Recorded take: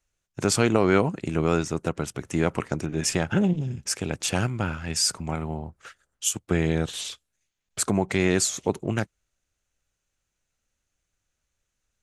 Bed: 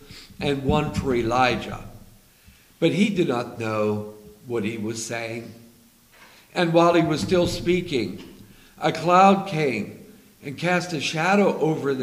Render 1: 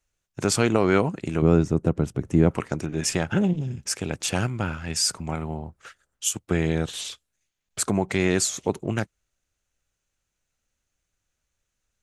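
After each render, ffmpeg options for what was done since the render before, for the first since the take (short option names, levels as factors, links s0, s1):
-filter_complex "[0:a]asettb=1/sr,asplit=3[s0][s1][s2];[s0]atrim=end=1.424[s3];[s1]atrim=start=1.42:end=2.51,asetpts=PTS-STARTPTS,afade=t=in:d=0.004:c=qsin,afade=t=out:st=1.086:d=0.004:c=qsin,tiltshelf=f=690:g=8.5[s4];[s2]atrim=start=2.506[s5];[s3][s4]acrossfade=d=0.004:c1=hsin:c2=qsin[s6];[s6][s5]acrossfade=d=0.004:c1=qsin:c2=hsin"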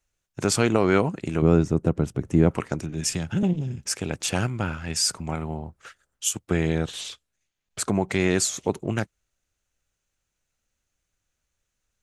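-filter_complex "[0:a]asettb=1/sr,asplit=3[s0][s1][s2];[s0]atrim=end=2.794[s3];[s1]atrim=start=2.79:end=3.43,asetpts=PTS-STARTPTS,afade=t=in:d=0.004:c=qsin,afade=t=out:st=0.636:d=0.004:c=qsin,acrossover=split=260|3000[s4][s5][s6];[s5]acompressor=threshold=0.00631:ratio=2:attack=3.2:release=140:knee=2.83:detection=peak[s7];[s4][s7][s6]amix=inputs=3:normalize=0[s8];[s2]atrim=start=3.426[s9];[s3][s8]acrossfade=d=0.004:c1=hsin:c2=qsin[s10];[s10][s9]acrossfade=d=0.004:c1=qsin:c2=hsin,asettb=1/sr,asplit=3[s11][s12][s13];[s11]atrim=end=6.774[s14];[s12]atrim=start=6.77:end=8.01,asetpts=PTS-STARTPTS,afade=t=in:d=0.004:c=qsin,afade=t=out:st=1.236:d=0.004:c=qsin,highshelf=f=8100:g=-6.5[s15];[s13]atrim=start=8.006[s16];[s14][s15]acrossfade=d=0.004:c1=hsin:c2=qsin[s17];[s17][s16]acrossfade=d=0.004:c1=qsin:c2=hsin"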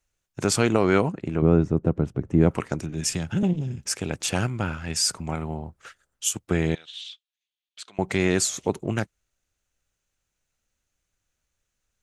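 -filter_complex "[0:a]asettb=1/sr,asplit=3[s0][s1][s2];[s0]atrim=end=1.124[s3];[s1]atrim=start=1.12:end=2.41,asetpts=PTS-STARTPTS,afade=t=in:d=0.004:c=qsin,afade=t=out:st=1.286:d=0.004:c=qsin,lowpass=f=1600:p=1[s4];[s2]atrim=start=2.406[s5];[s3][s4]acrossfade=d=0.004:c1=hsin:c2=qsin[s6];[s6][s5]acrossfade=d=0.004:c1=qsin:c2=hsin,asettb=1/sr,asplit=3[s7][s8][s9];[s7]atrim=end=6.754[s10];[s8]atrim=start=6.75:end=7.99,asetpts=PTS-STARTPTS,afade=t=in:d=0.004:c=qsin,afade=t=out:st=1.236:d=0.004:c=qsin,bandpass=f=3400:t=q:w=3.1[s11];[s9]atrim=start=7.986[s12];[s10][s11]acrossfade=d=0.004:c1=hsin:c2=qsin[s13];[s13][s12]acrossfade=d=0.004:c1=qsin:c2=hsin"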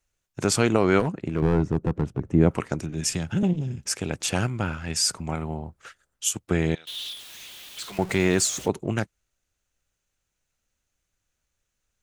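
-filter_complex "[0:a]asettb=1/sr,asplit=3[s0][s1][s2];[s0]atrim=end=1.004[s3];[s1]atrim=start=1:end=2.29,asetpts=PTS-STARTPTS,afade=t=in:d=0.004:c=qsin,afade=t=out:st=1.286:d=0.004:c=qsin,aeval=exprs='clip(val(0),-1,0.15)':c=same[s4];[s2]atrim=start=2.286[s5];[s3][s4]acrossfade=d=0.004:c1=hsin:c2=qsin[s6];[s6][s5]acrossfade=d=0.004:c1=qsin:c2=hsin,asettb=1/sr,asplit=3[s7][s8][s9];[s7]atrim=end=6.874[s10];[s8]atrim=start=6.87:end=8.68,asetpts=PTS-STARTPTS,afade=t=in:d=0.004:c=qsin,afade=t=out:st=1.806:d=0.004:c=qsin,aeval=exprs='val(0)+0.5*0.0178*sgn(val(0))':c=same[s11];[s9]atrim=start=8.676[s12];[s10][s11]acrossfade=d=0.004:c1=hsin:c2=qsin[s13];[s13][s12]acrossfade=d=0.004:c1=qsin:c2=hsin"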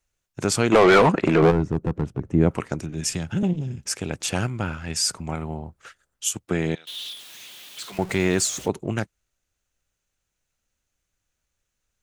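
-filter_complex "[0:a]asplit=3[s0][s1][s2];[s0]afade=t=out:st=0.71:d=0.02[s3];[s1]asplit=2[s4][s5];[s5]highpass=f=720:p=1,volume=25.1,asoftclip=type=tanh:threshold=0.531[s6];[s4][s6]amix=inputs=2:normalize=0,lowpass=f=2800:p=1,volume=0.501,afade=t=in:st=0.71:d=0.02,afade=t=out:st=1.5:d=0.02[s7];[s2]afade=t=in:st=1.5:d=0.02[s8];[s3][s7][s8]amix=inputs=3:normalize=0,asettb=1/sr,asplit=3[s9][s10][s11];[s9]atrim=end=6.474[s12];[s10]atrim=start=6.47:end=7.94,asetpts=PTS-STARTPTS,afade=t=in:d=0.004:c=qsin,afade=t=out:st=1.466:d=0.004:c=qsin,highpass=120[s13];[s11]atrim=start=7.936[s14];[s12][s13]acrossfade=d=0.004:c1=hsin:c2=qsin[s15];[s15][s14]acrossfade=d=0.004:c1=qsin:c2=hsin"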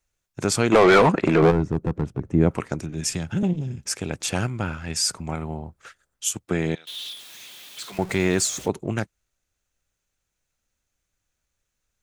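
-af "bandreject=f=2900:w=27"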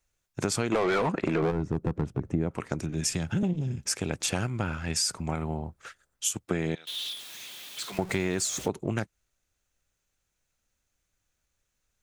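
-af "acompressor=threshold=0.0631:ratio=6"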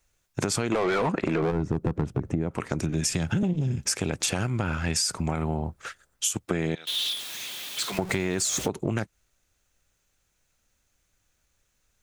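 -filter_complex "[0:a]asplit=2[s0][s1];[s1]alimiter=limit=0.1:level=0:latency=1,volume=1.19[s2];[s0][s2]amix=inputs=2:normalize=0,acompressor=threshold=0.0794:ratio=6"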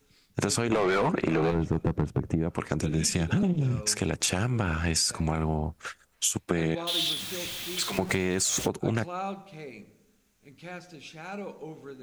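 -filter_complex "[1:a]volume=0.106[s0];[0:a][s0]amix=inputs=2:normalize=0"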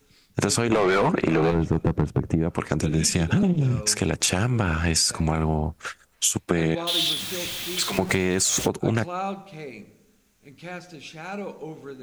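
-af "volume=1.68"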